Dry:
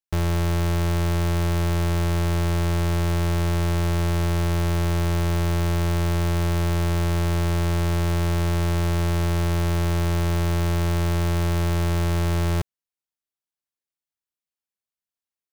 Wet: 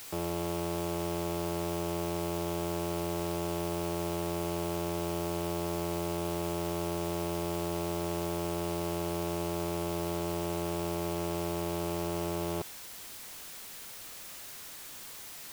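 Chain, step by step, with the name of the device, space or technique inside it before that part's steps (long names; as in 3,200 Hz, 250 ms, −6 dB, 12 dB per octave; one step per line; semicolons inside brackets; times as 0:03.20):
aircraft radio (band-pass filter 310–2,400 Hz; hard clipping −28.5 dBFS, distortion −6 dB; white noise bed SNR 11 dB)
level +1.5 dB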